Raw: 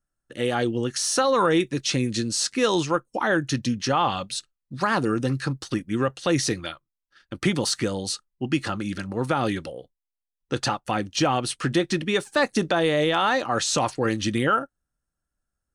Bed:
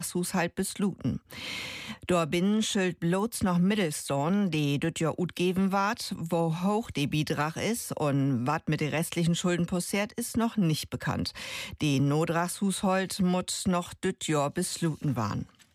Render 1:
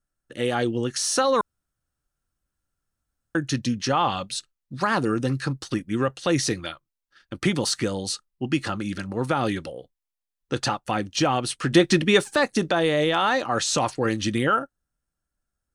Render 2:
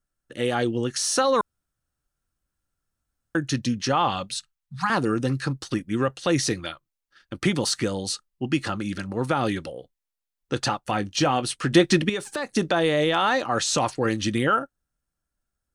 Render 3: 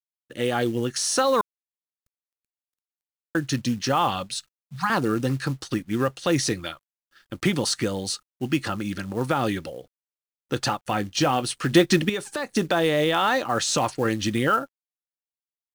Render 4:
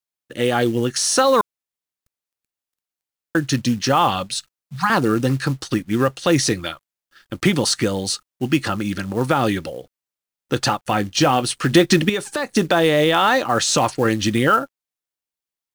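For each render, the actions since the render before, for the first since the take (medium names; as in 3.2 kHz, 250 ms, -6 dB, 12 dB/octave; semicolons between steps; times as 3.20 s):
1.41–3.35 s: room tone; 11.73–12.36 s: gain +5.5 dB
4.34–4.90 s: Chebyshev band-stop 200–770 Hz, order 4; 10.85–11.43 s: doubling 20 ms -11.5 dB; 12.09–12.51 s: compression 4:1, threshold -26 dBFS
companded quantiser 6-bit
trim +5.5 dB; peak limiter -3 dBFS, peak gain reduction 2.5 dB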